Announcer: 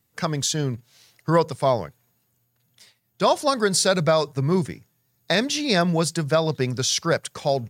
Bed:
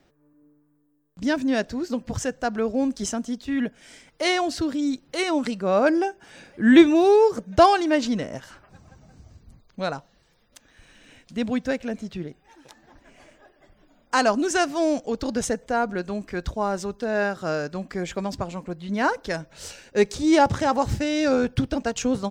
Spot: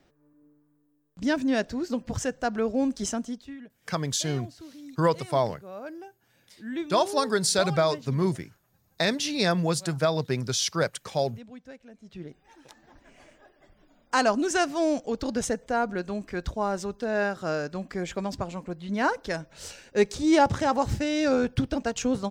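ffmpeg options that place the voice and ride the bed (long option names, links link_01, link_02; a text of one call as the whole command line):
ffmpeg -i stem1.wav -i stem2.wav -filter_complex "[0:a]adelay=3700,volume=-4dB[link_01];[1:a]volume=15.5dB,afade=type=out:start_time=3.17:duration=0.41:silence=0.125893,afade=type=in:start_time=12:duration=0.42:silence=0.133352[link_02];[link_01][link_02]amix=inputs=2:normalize=0" out.wav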